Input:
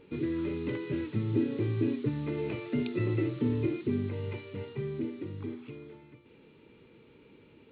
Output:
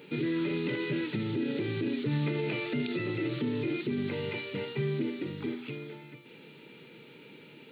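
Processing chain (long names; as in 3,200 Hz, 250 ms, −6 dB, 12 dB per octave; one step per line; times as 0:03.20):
spectral tilt +3 dB per octave
brickwall limiter −32.5 dBFS, peak gain reduction 9.5 dB
low shelf with overshoot 100 Hz −12.5 dB, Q 3
notch filter 1,100 Hz, Q 6.7
level +7.5 dB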